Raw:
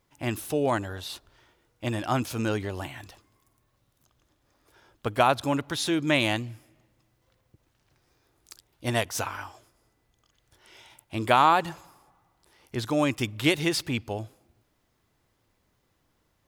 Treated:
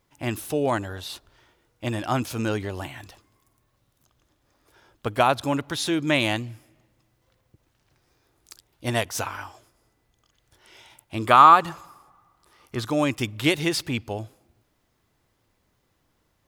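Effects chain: 11.26–12.88 s: peaking EQ 1.2 kHz +13 dB 0.24 oct; trim +1.5 dB

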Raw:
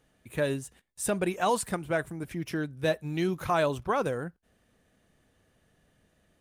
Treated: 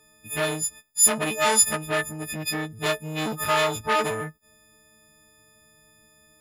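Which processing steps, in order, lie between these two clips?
partials quantised in pitch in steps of 6 st; transformer saturation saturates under 2.7 kHz; trim +4 dB

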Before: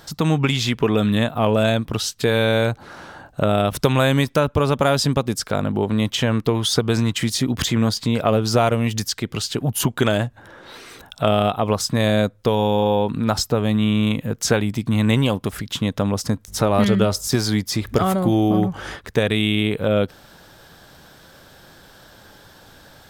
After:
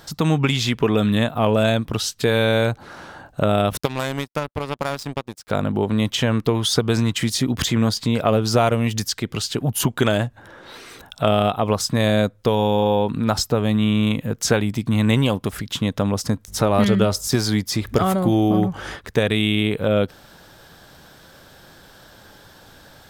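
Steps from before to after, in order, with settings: 3.77–5.48 s: power-law waveshaper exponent 2

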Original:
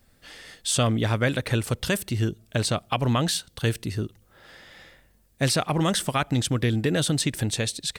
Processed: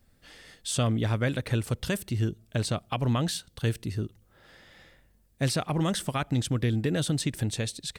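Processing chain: bass shelf 350 Hz +5 dB; trim -6.5 dB

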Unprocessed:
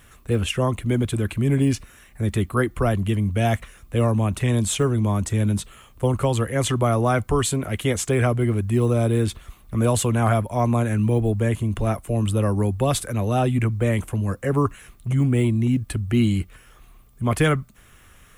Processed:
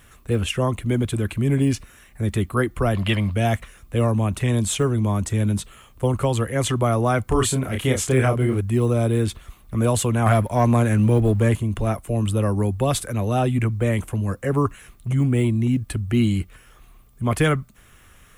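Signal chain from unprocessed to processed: 2.95–3.34 s: time-frequency box 510–5300 Hz +12 dB; 7.24–8.61 s: doubling 31 ms -4 dB; 10.26–11.57 s: waveshaping leveller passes 1

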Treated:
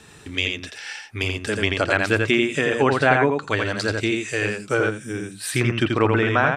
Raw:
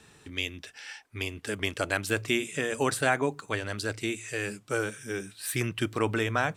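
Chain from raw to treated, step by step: 1.88–2.64 s: treble shelf 7 kHz +10.5 dB; on a send: delay 85 ms -4 dB; on the sum: low-pass that closes with the level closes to 2.7 kHz, closed at -22.5 dBFS; 4.91–5.40 s: time-frequency box 360–6800 Hz -7 dB; trim +8 dB

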